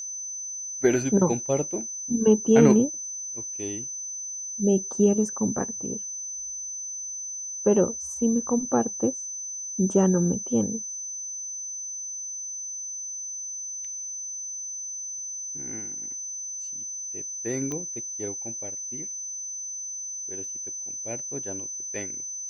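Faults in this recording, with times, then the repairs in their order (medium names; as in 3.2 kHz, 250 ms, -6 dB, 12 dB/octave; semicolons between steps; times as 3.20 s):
whine 6.1 kHz -32 dBFS
17.72 s: pop -19 dBFS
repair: de-click; band-stop 6.1 kHz, Q 30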